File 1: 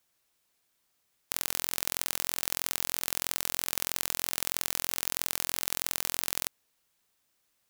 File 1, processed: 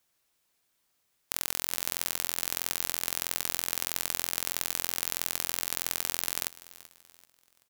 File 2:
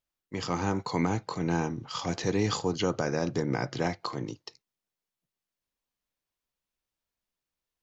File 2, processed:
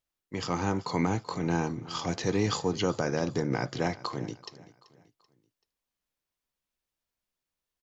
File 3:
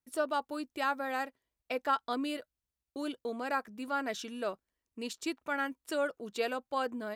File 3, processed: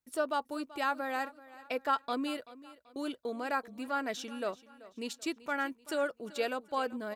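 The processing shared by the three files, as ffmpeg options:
-af "aecho=1:1:384|768|1152:0.119|0.0452|0.0172"

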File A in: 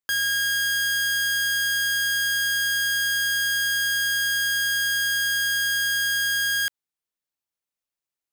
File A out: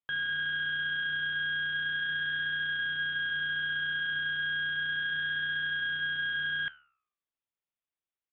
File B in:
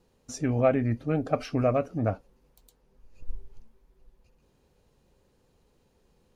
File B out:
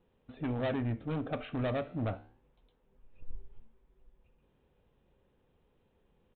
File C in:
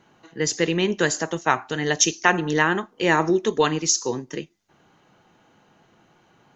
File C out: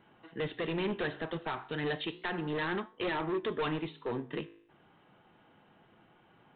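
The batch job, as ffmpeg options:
-af "alimiter=limit=-10.5dB:level=0:latency=1:release=481,aresample=8000,asoftclip=type=hard:threshold=-25dB,aresample=44100,flanger=delay=9.4:depth=9.7:regen=-82:speed=0.33:shape=sinusoidal"

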